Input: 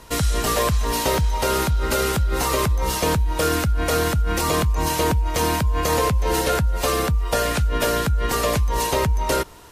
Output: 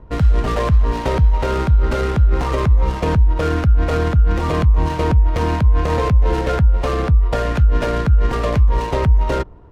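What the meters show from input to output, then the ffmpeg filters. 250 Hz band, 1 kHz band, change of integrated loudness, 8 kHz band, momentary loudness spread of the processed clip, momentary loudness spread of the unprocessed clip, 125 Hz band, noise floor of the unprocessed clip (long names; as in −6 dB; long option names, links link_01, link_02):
+3.0 dB, −0.5 dB, +4.0 dB, −15.5 dB, 2 LU, 1 LU, +7.5 dB, −25 dBFS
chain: -af "lowshelf=frequency=180:gain=9,adynamicsmooth=sensitivity=1.5:basefreq=770"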